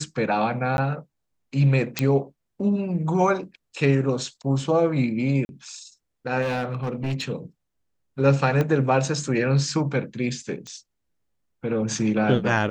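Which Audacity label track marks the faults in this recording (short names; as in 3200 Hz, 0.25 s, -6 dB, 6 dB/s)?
0.770000	0.780000	gap 11 ms
1.990000	1.990000	pop -7 dBFS
5.450000	5.490000	gap 41 ms
6.410000	7.240000	clipped -22 dBFS
8.610000	8.610000	pop -12 dBFS
10.670000	10.670000	pop -25 dBFS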